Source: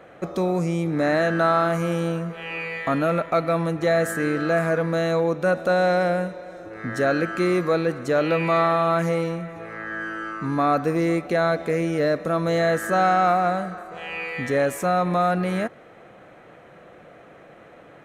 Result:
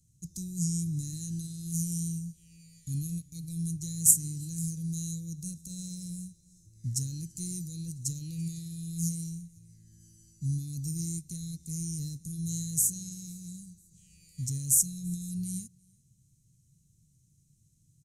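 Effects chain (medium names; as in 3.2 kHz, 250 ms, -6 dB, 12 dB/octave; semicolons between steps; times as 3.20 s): Chebyshev band-stop 130–6600 Hz, order 3; high-order bell 7.3 kHz +9 dB; on a send: delay 337 ms -23.5 dB; on the sum: upward expansion 1.5:1, over -49 dBFS; trim +8.5 dB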